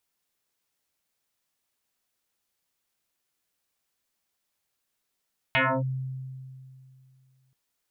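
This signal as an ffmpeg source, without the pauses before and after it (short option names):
-f lavfi -i "aevalsrc='0.119*pow(10,-3*t/2.53)*sin(2*PI*131*t+7.2*clip(1-t/0.28,0,1)*sin(2*PI*3.02*131*t))':d=1.98:s=44100"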